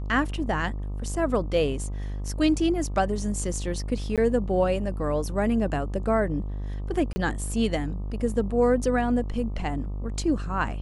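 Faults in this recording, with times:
mains buzz 50 Hz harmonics 25 −31 dBFS
0:04.16–0:04.18: drop-out 17 ms
0:07.13–0:07.16: drop-out 30 ms

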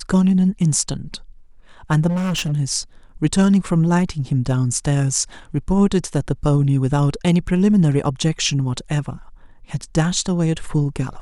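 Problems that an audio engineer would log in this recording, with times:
0:02.08–0:02.53: clipping −18.5 dBFS

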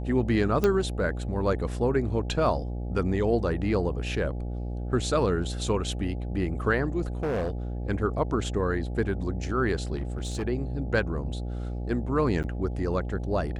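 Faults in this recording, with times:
mains buzz 60 Hz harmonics 14 −32 dBFS
0:00.64: click −12 dBFS
0:07.07–0:07.50: clipping −24.5 dBFS
0:09.95–0:10.43: clipping −26.5 dBFS
0:12.43–0:12.44: drop-out 8.5 ms

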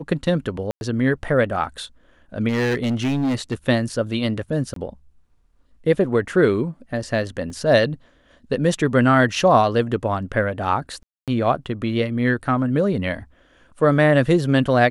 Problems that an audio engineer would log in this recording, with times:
0:00.71–0:00.81: drop-out 101 ms
0:02.48–0:03.54: clipping −17.5 dBFS
0:04.74–0:04.76: drop-out 23 ms
0:07.50: drop-out 2.8 ms
0:11.03–0:11.28: drop-out 247 ms

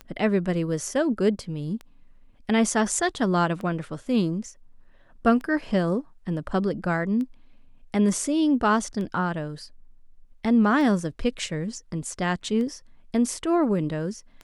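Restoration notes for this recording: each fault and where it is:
scratch tick 33 1/3 rpm −24 dBFS

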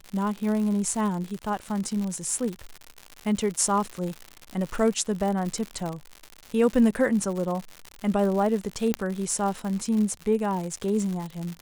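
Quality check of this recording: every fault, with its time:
surface crackle 150 per second −30 dBFS
0:08.94: click −9 dBFS

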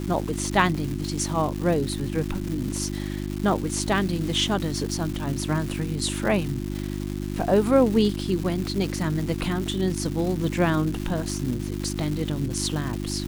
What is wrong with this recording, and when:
surface crackle 510 per second −30 dBFS
mains hum 50 Hz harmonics 7 −30 dBFS
0:00.75: drop-out 3.7 ms

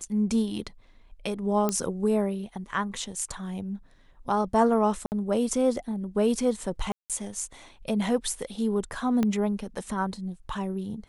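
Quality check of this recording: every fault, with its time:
0:01.69: click −12 dBFS
0:05.06–0:05.12: drop-out 59 ms
0:06.92–0:07.10: drop-out 177 ms
0:09.23: click −14 dBFS

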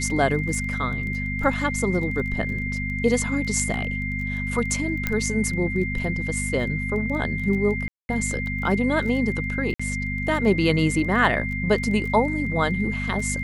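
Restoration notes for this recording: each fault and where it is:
surface crackle 17 per second −31 dBFS
mains hum 50 Hz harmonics 5 −29 dBFS
whistle 2,100 Hz −29 dBFS
0:05.07: click −9 dBFS
0:07.88–0:08.09: drop-out 211 ms
0:09.74–0:09.79: drop-out 55 ms

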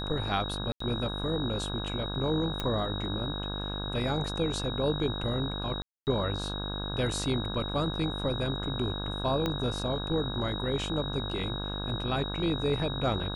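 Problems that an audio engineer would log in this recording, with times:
mains buzz 50 Hz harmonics 33 −36 dBFS
whistle 3,800 Hz −37 dBFS
0:00.72–0:00.80: drop-out 84 ms
0:02.60: click −17 dBFS
0:05.82–0:06.07: drop-out 249 ms
0:09.46: click −16 dBFS

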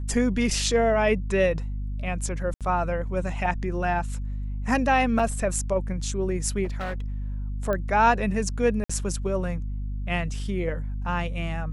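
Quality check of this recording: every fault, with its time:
mains hum 50 Hz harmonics 5 −30 dBFS
0:02.54–0:02.61: drop-out 67 ms
0:05.19: drop-out 4.9 ms
0:06.64–0:07.06: clipping −26.5 dBFS
0:07.73: click −16 dBFS
0:08.84–0:08.89: drop-out 55 ms

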